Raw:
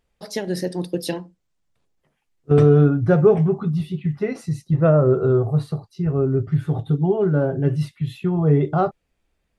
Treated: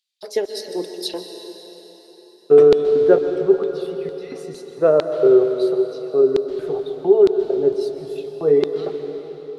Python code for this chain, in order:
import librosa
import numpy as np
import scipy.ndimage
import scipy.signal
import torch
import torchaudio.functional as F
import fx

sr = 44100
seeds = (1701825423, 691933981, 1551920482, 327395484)

y = fx.filter_lfo_highpass(x, sr, shape='square', hz=2.2, low_hz=410.0, high_hz=4000.0, q=3.5)
y = fx.band_shelf(y, sr, hz=2200.0, db=-9.0, octaves=1.7, at=(7.47, 8.16))
y = fx.rev_plate(y, sr, seeds[0], rt60_s=4.2, hf_ratio=0.9, predelay_ms=115, drr_db=6.5)
y = y * 10.0 ** (-2.5 / 20.0)